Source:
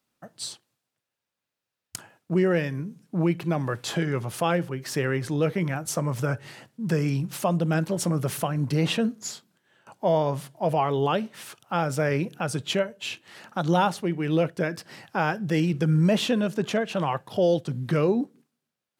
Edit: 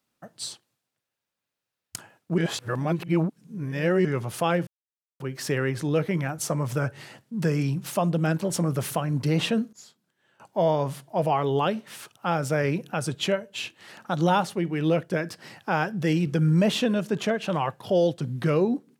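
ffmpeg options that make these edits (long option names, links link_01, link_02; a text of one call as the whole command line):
ffmpeg -i in.wav -filter_complex "[0:a]asplit=5[link_01][link_02][link_03][link_04][link_05];[link_01]atrim=end=2.382[link_06];[link_02]atrim=start=2.378:end=4.052,asetpts=PTS-STARTPTS,areverse[link_07];[link_03]atrim=start=4.048:end=4.67,asetpts=PTS-STARTPTS,afade=type=out:start_time=0.618:duration=0.004:curve=hsin,apad=pad_dur=0.53[link_08];[link_04]atrim=start=4.67:end=9.2,asetpts=PTS-STARTPTS,afade=type=in:duration=0.004:curve=hsin,afade=type=out:start_time=4.526:duration=0.004:curve=hsin:silence=0.125893[link_09];[link_05]atrim=start=9.2,asetpts=PTS-STARTPTS,afade=type=in:duration=0.92:silence=0.125893[link_10];[link_06][link_07]acrossfade=duration=0.004:curve1=hsin:curve2=hsin[link_11];[link_08][link_09][link_10]concat=n=3:v=0:a=1[link_12];[link_11][link_12]acrossfade=duration=0.004:curve1=hsin:curve2=hsin" out.wav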